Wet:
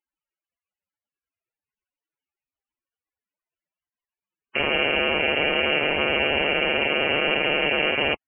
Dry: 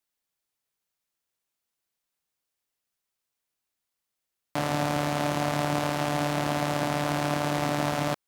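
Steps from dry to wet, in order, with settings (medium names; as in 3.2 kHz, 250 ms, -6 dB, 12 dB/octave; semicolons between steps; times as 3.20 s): rattle on loud lows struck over -34 dBFS, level -15 dBFS; loudest bins only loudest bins 64; frequency inversion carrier 3 kHz; trim +3.5 dB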